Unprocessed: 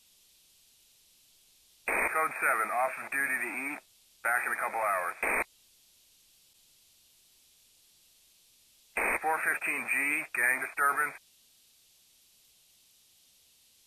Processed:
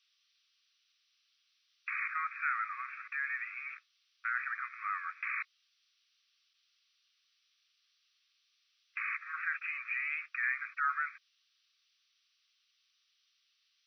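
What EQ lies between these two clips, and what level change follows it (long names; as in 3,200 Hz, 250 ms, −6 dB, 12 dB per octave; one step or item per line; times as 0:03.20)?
linear-phase brick-wall band-pass 1,100–6,100 Hz
high-shelf EQ 4,100 Hz −10 dB
−4.0 dB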